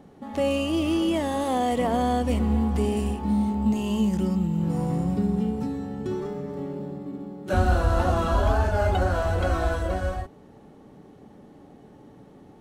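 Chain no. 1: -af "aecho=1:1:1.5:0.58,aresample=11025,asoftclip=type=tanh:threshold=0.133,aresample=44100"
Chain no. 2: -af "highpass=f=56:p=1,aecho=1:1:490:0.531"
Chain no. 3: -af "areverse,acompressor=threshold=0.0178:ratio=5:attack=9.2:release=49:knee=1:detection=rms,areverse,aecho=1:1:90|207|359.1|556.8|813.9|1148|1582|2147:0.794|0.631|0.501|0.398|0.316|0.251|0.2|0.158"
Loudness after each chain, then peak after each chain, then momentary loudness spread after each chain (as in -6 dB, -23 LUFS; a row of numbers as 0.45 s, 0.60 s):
-26.5 LUFS, -25.0 LUFS, -33.0 LUFS; -17.5 dBFS, -9.5 dBFS, -18.5 dBFS; 10 LU, 10 LU, 11 LU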